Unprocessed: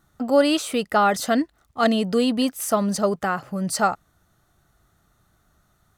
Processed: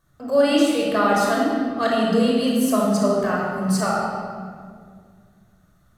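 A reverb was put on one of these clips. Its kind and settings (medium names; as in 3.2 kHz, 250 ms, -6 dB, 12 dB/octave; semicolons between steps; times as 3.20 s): simulated room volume 3400 m³, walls mixed, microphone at 5.5 m; trim -6.5 dB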